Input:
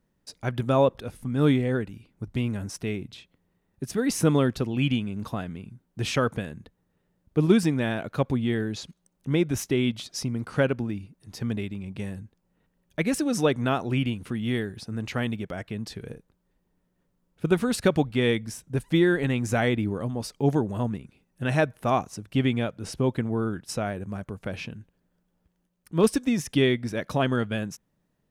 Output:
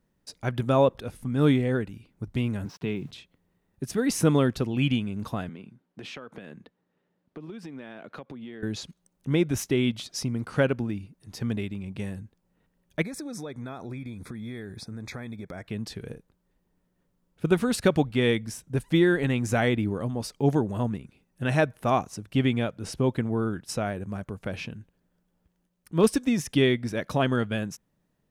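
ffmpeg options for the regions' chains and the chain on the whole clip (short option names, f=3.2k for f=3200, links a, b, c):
-filter_complex "[0:a]asettb=1/sr,asplit=3[a][b][c];[a]atrim=end=2.654[d];[b]atrim=start=2.65:end=3.11,asetpts=PTS-STARTPTS,afade=t=in:d=0.004:c=qsin,afade=t=out:st=0.456:d=0.004:c=qsin,highpass=120,equalizer=f=150:t=q:w=4:g=9,equalizer=f=630:t=q:w=4:g=-4,equalizer=f=940:t=q:w=4:g=6,equalizer=f=2k:t=q:w=4:g=-4,lowpass=f=4.4k:w=0.5412,lowpass=f=4.4k:w=1.3066,aeval=exprs='val(0)*gte(abs(val(0)),0.00211)':c=same[e];[c]atrim=start=3.106[f];[d][e]acrossfade=d=0.004:c1=hsin:c2=qsin[g];[g][f]acrossfade=d=0.004:c1=qsin:c2=hsin,asettb=1/sr,asplit=3[h][i][j];[h]atrim=end=5.494[k];[i]atrim=start=5.49:end=8.63,asetpts=PTS-STARTPTS,afade=t=in:d=0.004:c=qsin,afade=t=out:st=3.136:d=0.004:c=qsin,acrossover=split=160 4900:gain=0.0631 1 0.224[l][m][n];[l][m][n]amix=inputs=3:normalize=0,acompressor=threshold=-36dB:ratio=16:attack=3.2:release=140:knee=1:detection=peak[o];[j]atrim=start=8.626[p];[k][o]acrossfade=d=0.004:c1=hsin:c2=qsin[q];[q][p]acrossfade=d=0.004:c1=qsin:c2=hsin,asettb=1/sr,asplit=3[r][s][t];[r]atrim=end=13.024[u];[s]atrim=start=13.02:end=15.66,asetpts=PTS-STARTPTS,afade=t=in:d=0.004:c=qsin,afade=t=out:st=2.636:d=0.004:c=qsin,asuperstop=centerf=2900:order=12:qfactor=3.7,acompressor=threshold=-34dB:ratio=6:attack=3.2:release=140:knee=1:detection=peak[v];[t]atrim=start=15.656[w];[u][v]acrossfade=d=0.004:c1=hsin:c2=qsin[x];[x][w]acrossfade=d=0.004:c1=qsin:c2=hsin"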